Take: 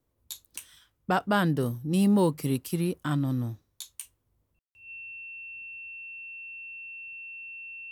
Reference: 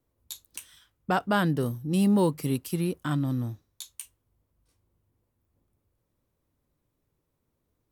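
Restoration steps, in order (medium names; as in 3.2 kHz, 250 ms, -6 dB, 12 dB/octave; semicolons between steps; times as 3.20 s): band-stop 2.7 kHz, Q 30; room tone fill 4.59–4.75 s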